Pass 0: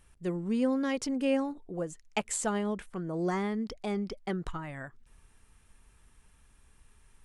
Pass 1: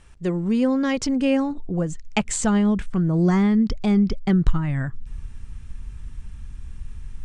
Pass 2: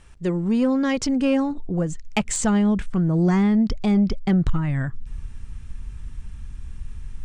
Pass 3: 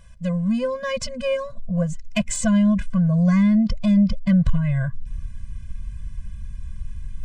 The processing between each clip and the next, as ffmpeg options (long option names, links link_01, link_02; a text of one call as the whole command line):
ffmpeg -i in.wav -filter_complex "[0:a]lowpass=frequency=8000:width=0.5412,lowpass=frequency=8000:width=1.3066,asubboost=boost=7:cutoff=200,asplit=2[link_01][link_02];[link_02]acompressor=threshold=-33dB:ratio=6,volume=-2.5dB[link_03];[link_01][link_03]amix=inputs=2:normalize=0,volume=5.5dB" out.wav
ffmpeg -i in.wav -af "aeval=exprs='0.596*sin(PI/2*1.78*val(0)/0.596)':channel_layout=same,volume=-8dB" out.wav
ffmpeg -i in.wav -af "afftfilt=real='re*eq(mod(floor(b*sr/1024/240),2),0)':imag='im*eq(mod(floor(b*sr/1024/240),2),0)':win_size=1024:overlap=0.75,volume=2.5dB" out.wav